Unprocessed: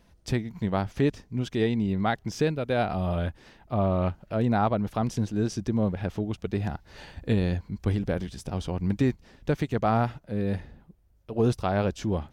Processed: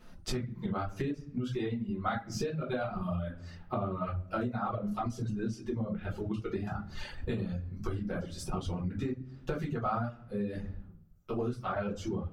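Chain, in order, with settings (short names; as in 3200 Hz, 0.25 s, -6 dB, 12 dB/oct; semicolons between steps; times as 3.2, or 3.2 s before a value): shoebox room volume 49 m³, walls mixed, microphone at 1.5 m; reverb removal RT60 1.8 s; compressor 12:1, threshold -28 dBFS, peak gain reduction 21 dB; bell 1300 Hz +10 dB 0.35 oct; gain -3 dB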